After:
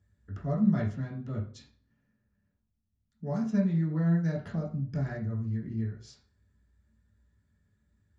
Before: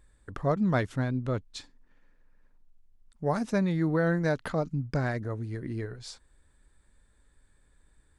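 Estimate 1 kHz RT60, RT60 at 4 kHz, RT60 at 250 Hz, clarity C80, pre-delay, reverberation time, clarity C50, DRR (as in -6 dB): 0.40 s, 0.40 s, 0.50 s, 12.5 dB, 3 ms, 0.45 s, 8.0 dB, -5.0 dB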